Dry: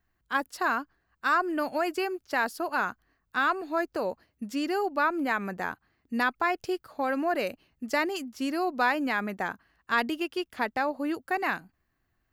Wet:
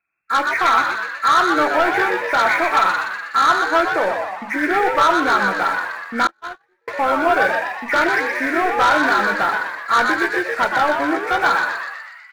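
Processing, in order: knee-point frequency compression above 1.3 kHz 4:1; high-pass 1 kHz 6 dB/octave; waveshaping leveller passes 3; frequency-shifting echo 123 ms, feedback 58%, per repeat +100 Hz, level -5 dB; simulated room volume 300 m³, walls furnished, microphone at 0.69 m; 6.27–6.88 s: gate -17 dBFS, range -46 dB; trim +5 dB

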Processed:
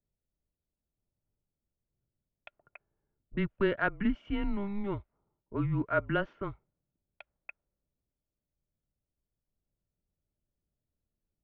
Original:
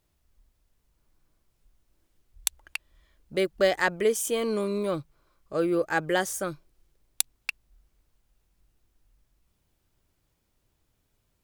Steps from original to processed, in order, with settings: level-controlled noise filter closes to 450 Hz, open at -22.5 dBFS; small resonant body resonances 230/790/1600 Hz, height 8 dB; mistuned SSB -200 Hz 180–3100 Hz; trim -6 dB

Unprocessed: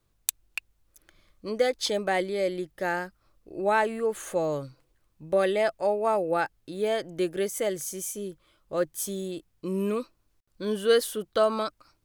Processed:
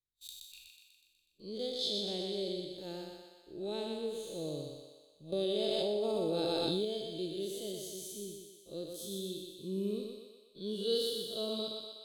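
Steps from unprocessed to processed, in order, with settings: spectral blur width 115 ms; gate -53 dBFS, range -19 dB; FFT filter 410 Hz 0 dB, 830 Hz -15 dB, 1.9 kHz -23 dB, 3.8 kHz +14 dB, 5.7 kHz -3 dB; on a send: thinning echo 123 ms, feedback 62%, high-pass 350 Hz, level -3 dB; 5.32–6.85 s: on the sum: level flattener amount 100%; trim -7 dB

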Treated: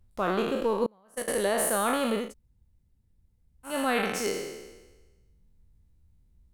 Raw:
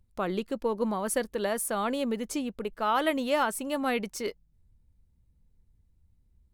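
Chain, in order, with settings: spectral sustain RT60 1.20 s; 0.86–1.28 s: gate -21 dBFS, range -32 dB; 2.26–3.71 s: room tone, crossfade 0.16 s

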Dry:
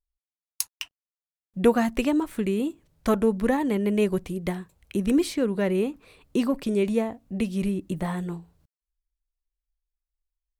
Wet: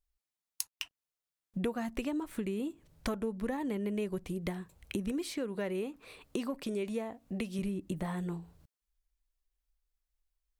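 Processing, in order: 5.11–7.59 s: bass shelf 230 Hz -8.5 dB; compression 4:1, threshold -37 dBFS, peak gain reduction 19.5 dB; trim +2.5 dB

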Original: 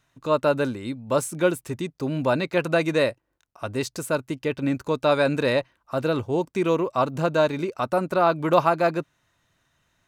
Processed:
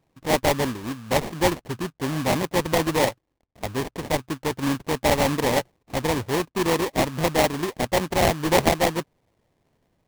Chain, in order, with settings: sample-rate reducer 1.4 kHz, jitter 20%

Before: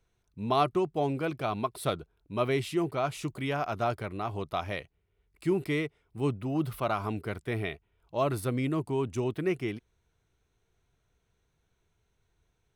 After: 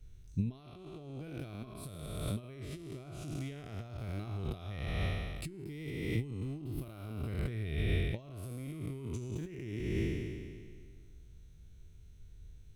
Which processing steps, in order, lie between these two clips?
spectral sustain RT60 1.92 s; compressor with a negative ratio -38 dBFS, ratio -1; amplifier tone stack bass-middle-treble 10-0-1; trim +16.5 dB

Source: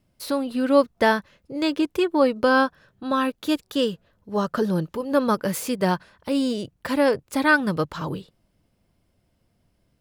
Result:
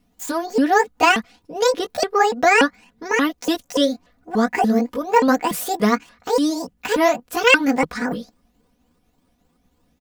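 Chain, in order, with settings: sawtooth pitch modulation +10.5 st, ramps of 290 ms; comb 4.1 ms, depth 71%; trim +3.5 dB

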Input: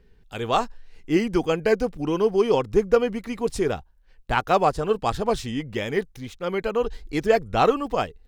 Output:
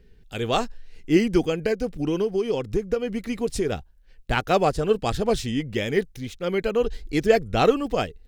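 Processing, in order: peaking EQ 1 kHz -9 dB 1 oct; 1.45–3.72 s: compression 10:1, threshold -23 dBFS, peak gain reduction 10 dB; trim +3 dB

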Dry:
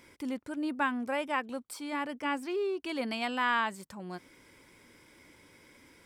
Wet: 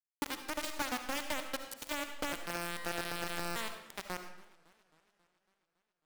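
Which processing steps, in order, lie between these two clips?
2.32–3.56 s: sorted samples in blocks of 256 samples; band-stop 6.7 kHz, Q 6.5; in parallel at -1 dB: peak limiter -25 dBFS, peak gain reduction 8 dB; on the sum: high-pass sweep 98 Hz -> 400 Hz, 0.38–1.27 s; compression 6:1, threshold -33 dBFS, peak gain reduction 13 dB; bit crusher 5-bit; on a send at -6.5 dB: reverberation RT60 0.75 s, pre-delay 30 ms; on the sum: modulated delay 274 ms, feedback 63%, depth 217 cents, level -23 dB; trim -2 dB

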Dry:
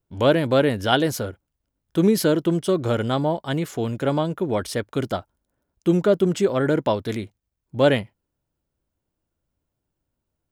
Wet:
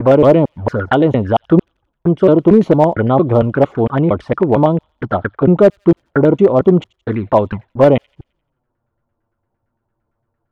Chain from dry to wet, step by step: slices played last to first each 228 ms, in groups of 3; in parallel at +2 dB: peak limiter -13 dBFS, peak gain reduction 9 dB; on the sum: touch-sensitive flanger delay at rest 8.8 ms, full sweep at -13.5 dBFS; LFO low-pass saw down 8.8 Hz 790–1800 Hz; hard clipper -5 dBFS, distortion -27 dB; on a send: feedback echo behind a high-pass 87 ms, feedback 47%, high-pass 3.4 kHz, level -19.5 dB; on the sum: trim +3.5 dB

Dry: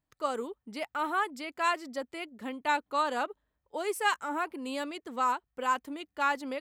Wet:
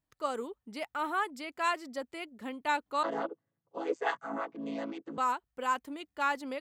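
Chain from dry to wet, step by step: 3.03–5.18 s: vocoder on a held chord major triad, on A2; trim -2 dB

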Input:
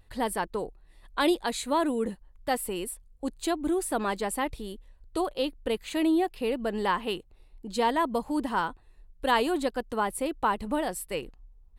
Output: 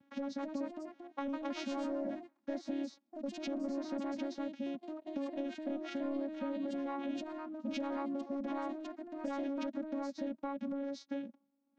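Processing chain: vocoder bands 8, saw 278 Hz; saturation -19.5 dBFS, distortion -19 dB; peak limiter -30.5 dBFS, peak gain reduction 10.5 dB; formant shift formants -4 st; compression, threshold -39 dBFS, peak gain reduction 7 dB; ever faster or slower copies 282 ms, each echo +2 st, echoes 2, each echo -6 dB; trim +3.5 dB

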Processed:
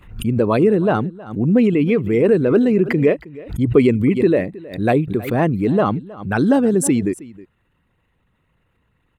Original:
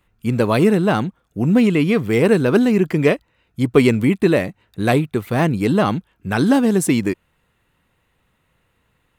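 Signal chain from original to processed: resonances exaggerated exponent 1.5; delay 317 ms -20 dB; swell ahead of each attack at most 120 dB/s

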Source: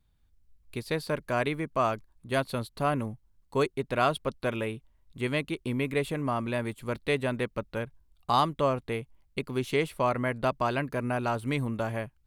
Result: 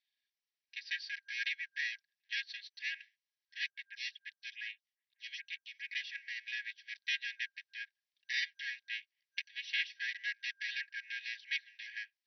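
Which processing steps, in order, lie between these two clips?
comb filter that takes the minimum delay 3.6 ms; FFT band-pass 1.6–6 kHz; 3.70–5.89 s: lamp-driven phase shifter 2.4 Hz; trim -1 dB

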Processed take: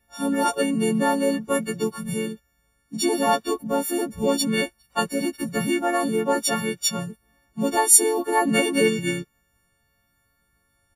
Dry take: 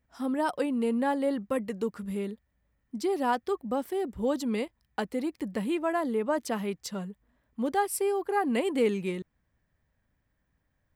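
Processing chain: partials quantised in pitch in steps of 4 st; harmony voices -7 st -16 dB, -4 st -9 dB; trim +5 dB; WMA 32 kbps 32 kHz

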